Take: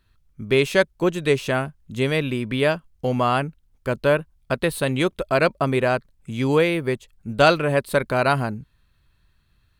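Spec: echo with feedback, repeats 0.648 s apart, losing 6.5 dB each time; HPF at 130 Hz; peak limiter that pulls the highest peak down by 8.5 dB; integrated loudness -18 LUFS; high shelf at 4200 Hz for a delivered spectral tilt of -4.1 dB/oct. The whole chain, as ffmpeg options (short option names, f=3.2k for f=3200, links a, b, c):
-af "highpass=130,highshelf=f=4.2k:g=3.5,alimiter=limit=-10.5dB:level=0:latency=1,aecho=1:1:648|1296|1944|2592|3240|3888:0.473|0.222|0.105|0.0491|0.0231|0.0109,volume=5dB"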